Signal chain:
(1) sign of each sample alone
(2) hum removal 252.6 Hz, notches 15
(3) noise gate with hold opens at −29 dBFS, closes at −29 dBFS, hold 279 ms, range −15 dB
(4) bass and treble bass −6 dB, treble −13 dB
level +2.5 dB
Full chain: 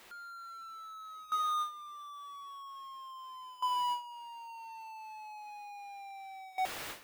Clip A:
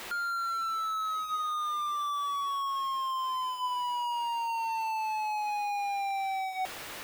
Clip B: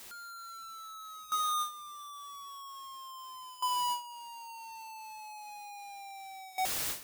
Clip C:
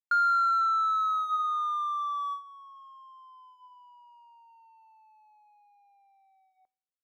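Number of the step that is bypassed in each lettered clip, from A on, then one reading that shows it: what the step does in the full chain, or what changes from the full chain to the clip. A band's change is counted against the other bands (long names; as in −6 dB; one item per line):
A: 3, change in momentary loudness spread −13 LU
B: 4, 8 kHz band +10.5 dB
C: 1, change in momentary loudness spread −4 LU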